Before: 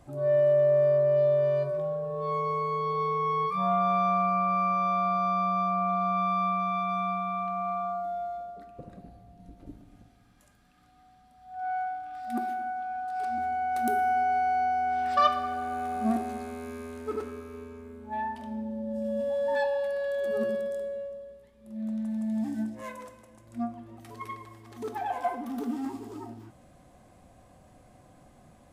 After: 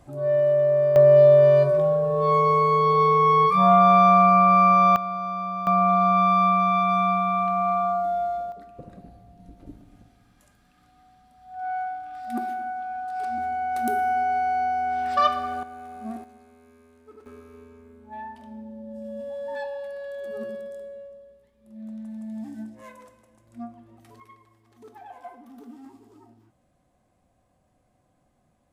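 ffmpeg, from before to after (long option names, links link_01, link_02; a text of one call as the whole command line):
ffmpeg -i in.wav -af "asetnsamples=nb_out_samples=441:pad=0,asendcmd='0.96 volume volume 10dB;4.96 volume volume -2.5dB;5.67 volume volume 8dB;8.52 volume volume 2dB;15.63 volume volume -8dB;16.24 volume volume -16dB;17.26 volume volume -5dB;24.2 volume volume -12dB',volume=2dB" out.wav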